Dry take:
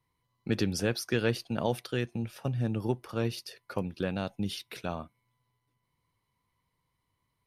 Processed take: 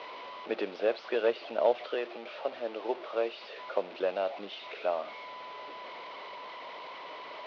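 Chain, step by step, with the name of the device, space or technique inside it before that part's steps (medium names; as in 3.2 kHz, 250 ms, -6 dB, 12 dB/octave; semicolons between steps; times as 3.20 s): 1.94–3.60 s: high-pass 270 Hz 12 dB/octave; digital answering machine (band-pass 330–3000 Hz; one-bit delta coder 32 kbps, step -39.5 dBFS; cabinet simulation 400–3800 Hz, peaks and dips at 420 Hz +3 dB, 610 Hz +10 dB, 1.7 kHz -5 dB); trim +2 dB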